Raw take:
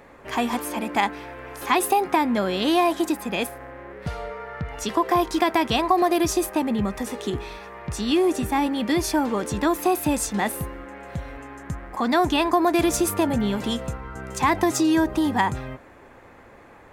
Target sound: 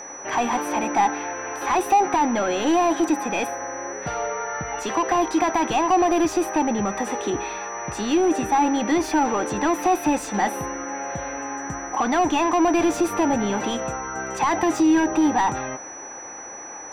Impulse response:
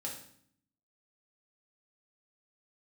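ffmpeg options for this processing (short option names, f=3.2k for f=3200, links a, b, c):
-filter_complex "[0:a]equalizer=f=1.6k:t=o:w=0.62:g=3.5,asplit=2[a][b];[b]highpass=f=720:p=1,volume=24dB,asoftclip=type=tanh:threshold=-5.5dB[c];[a][c]amix=inputs=2:normalize=0,lowpass=f=1.2k:p=1,volume=-6dB,equalizer=f=315:t=o:w=0.33:g=6,equalizer=f=800:t=o:w=0.33:g=7,equalizer=f=2.5k:t=o:w=0.33:g=3,aeval=exprs='val(0)+0.0398*sin(2*PI*5900*n/s)':c=same,asplit=2[d][e];[1:a]atrim=start_sample=2205[f];[e][f]afir=irnorm=-1:irlink=0,volume=-16.5dB[g];[d][g]amix=inputs=2:normalize=0,volume=-8.5dB"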